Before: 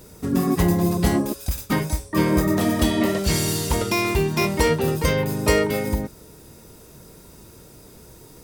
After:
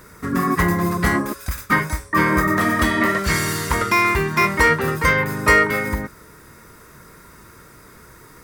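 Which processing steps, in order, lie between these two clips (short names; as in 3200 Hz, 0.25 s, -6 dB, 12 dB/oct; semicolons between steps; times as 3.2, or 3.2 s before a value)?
band shelf 1500 Hz +13.5 dB 1.3 oct; gain -1 dB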